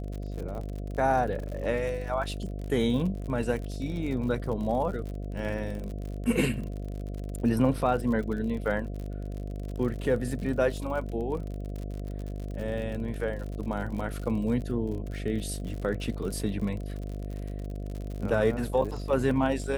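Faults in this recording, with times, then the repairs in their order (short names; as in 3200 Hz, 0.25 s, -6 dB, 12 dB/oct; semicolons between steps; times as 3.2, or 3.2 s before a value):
buzz 50 Hz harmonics 14 -35 dBFS
crackle 55/s -35 dBFS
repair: de-click; de-hum 50 Hz, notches 14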